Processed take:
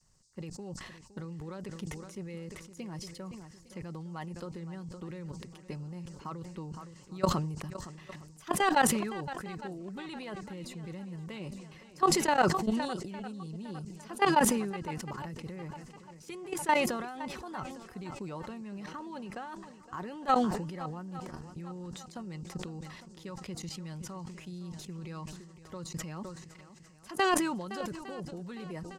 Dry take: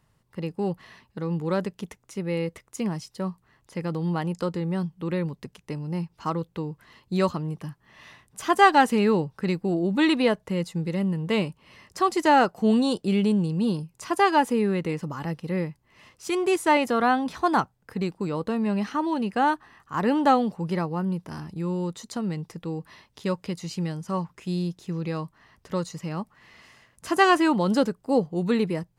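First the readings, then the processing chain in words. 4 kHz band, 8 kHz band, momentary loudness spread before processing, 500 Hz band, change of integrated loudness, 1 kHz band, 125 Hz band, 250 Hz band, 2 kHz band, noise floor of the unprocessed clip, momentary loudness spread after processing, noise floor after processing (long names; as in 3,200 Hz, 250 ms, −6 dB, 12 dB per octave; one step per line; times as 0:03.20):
−6.5 dB, +3.5 dB, 14 LU, −10.5 dB, −9.0 dB, −8.0 dB, −10.0 dB, −11.0 dB, −8.0 dB, −67 dBFS, 18 LU, −54 dBFS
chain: comb filter 5.4 ms, depth 37%
output level in coarse steps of 17 dB
harmonic and percussive parts rebalanced harmonic −6 dB
low-shelf EQ 89 Hz +9 dB
noise in a band 4,500–8,500 Hz −71 dBFS
on a send: feedback echo with a long and a short gap by turns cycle 857 ms, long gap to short 1.5 to 1, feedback 34%, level −15 dB
on the sum: level that may fall only so fast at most 48 dB per second
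level −3.5 dB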